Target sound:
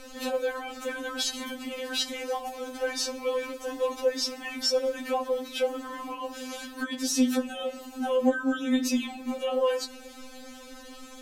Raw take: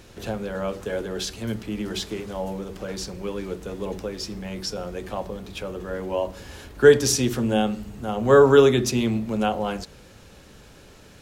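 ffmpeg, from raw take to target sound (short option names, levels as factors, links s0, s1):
-af "acompressor=threshold=0.0562:ratio=5,alimiter=limit=0.0708:level=0:latency=1:release=17,afftfilt=real='re*3.46*eq(mod(b,12),0)':imag='im*3.46*eq(mod(b,12),0)':win_size=2048:overlap=0.75,volume=2.24"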